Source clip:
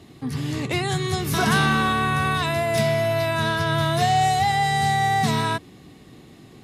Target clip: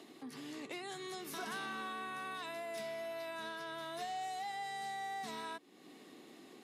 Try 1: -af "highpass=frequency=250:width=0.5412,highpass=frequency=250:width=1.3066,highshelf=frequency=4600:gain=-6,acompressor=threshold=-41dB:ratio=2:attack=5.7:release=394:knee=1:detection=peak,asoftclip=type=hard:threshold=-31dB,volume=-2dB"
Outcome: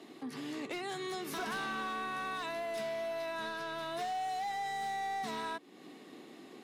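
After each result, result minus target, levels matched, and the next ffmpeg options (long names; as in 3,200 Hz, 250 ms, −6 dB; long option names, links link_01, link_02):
downward compressor: peak gain reduction −6.5 dB; 8,000 Hz band −3.0 dB
-af "highpass=frequency=250:width=0.5412,highpass=frequency=250:width=1.3066,highshelf=frequency=4600:gain=-6,acompressor=threshold=-53dB:ratio=2:attack=5.7:release=394:knee=1:detection=peak,asoftclip=type=hard:threshold=-31dB,volume=-2dB"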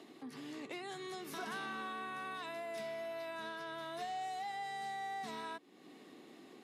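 8,000 Hz band −4.0 dB
-af "highpass=frequency=250:width=0.5412,highpass=frequency=250:width=1.3066,acompressor=threshold=-53dB:ratio=2:attack=5.7:release=394:knee=1:detection=peak,asoftclip=type=hard:threshold=-31dB,volume=-2dB"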